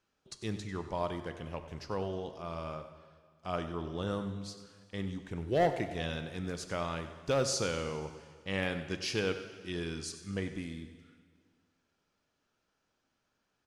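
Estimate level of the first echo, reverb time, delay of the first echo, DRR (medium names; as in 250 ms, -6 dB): -14.0 dB, 1.8 s, 95 ms, 8.0 dB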